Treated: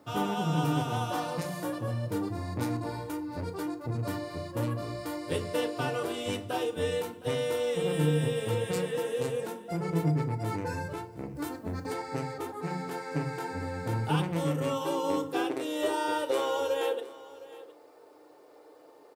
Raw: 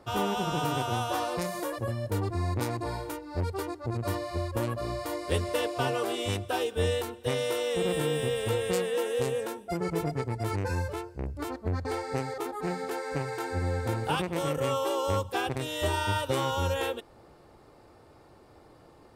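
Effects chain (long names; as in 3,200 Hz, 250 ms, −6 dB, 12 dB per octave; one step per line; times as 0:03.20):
high-pass filter sweep 150 Hz → 440 Hz, 0:14.26–0:15.94
on a send: single-tap delay 713 ms −18.5 dB
on the sum: feedback delay network reverb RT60 0.43 s, low-frequency decay 1.5×, high-frequency decay 0.65×, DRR 5 dB
bit-depth reduction 12 bits, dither triangular
0:11.35–0:11.94: high-shelf EQ 6,400 Hz +8.5 dB
level −4.5 dB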